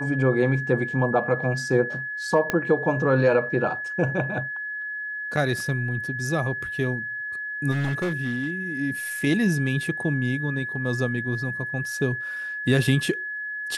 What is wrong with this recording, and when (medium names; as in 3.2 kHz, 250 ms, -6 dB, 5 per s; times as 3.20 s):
whine 1.7 kHz -29 dBFS
2.50 s: pop -9 dBFS
7.71–8.50 s: clipped -21.5 dBFS